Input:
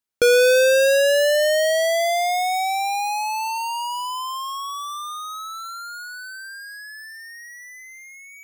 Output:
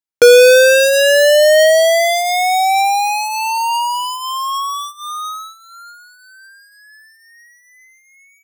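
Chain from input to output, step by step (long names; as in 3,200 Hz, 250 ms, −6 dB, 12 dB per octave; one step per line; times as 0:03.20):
comb filter 6.4 ms, depth 36%
noise gate −32 dBFS, range −15 dB
level +7.5 dB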